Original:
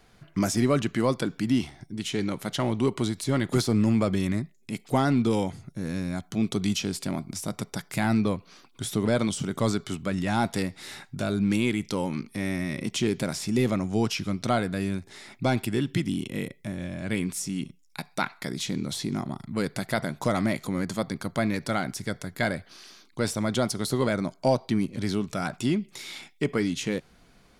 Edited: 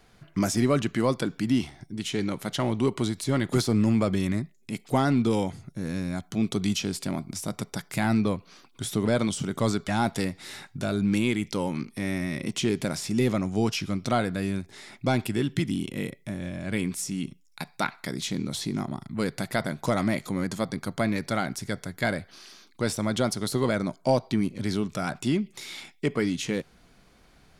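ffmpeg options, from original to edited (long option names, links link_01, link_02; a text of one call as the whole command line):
ffmpeg -i in.wav -filter_complex "[0:a]asplit=2[link_01][link_02];[link_01]atrim=end=9.882[link_03];[link_02]atrim=start=10.258[link_04];[link_03][link_04]acrossfade=duration=0.004:curve1=hsin:curve2=hsin" out.wav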